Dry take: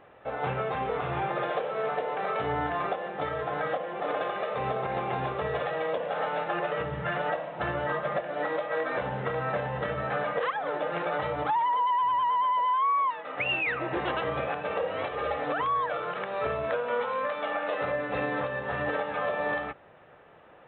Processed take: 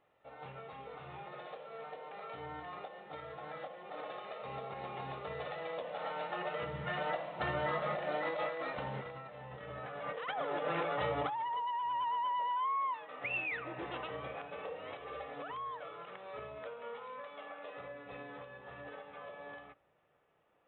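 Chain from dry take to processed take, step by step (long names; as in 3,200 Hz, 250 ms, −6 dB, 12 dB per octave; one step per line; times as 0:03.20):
source passing by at 0:09.44, 9 m/s, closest 2.1 metres
compressor whose output falls as the input rises −47 dBFS, ratio −1
high-shelf EQ 3,200 Hz +8 dB
notch filter 1,600 Hz, Q 11
on a send: convolution reverb RT60 0.75 s, pre-delay 7 ms, DRR 21 dB
on the sum: level +8.5 dB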